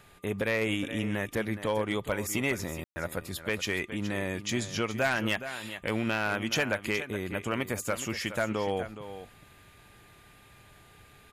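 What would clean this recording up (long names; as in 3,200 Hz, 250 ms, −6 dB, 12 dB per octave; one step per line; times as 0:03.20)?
clipped peaks rebuilt −19.5 dBFS
notch filter 1,200 Hz, Q 30
ambience match 0:02.84–0:02.96
echo removal 418 ms −12 dB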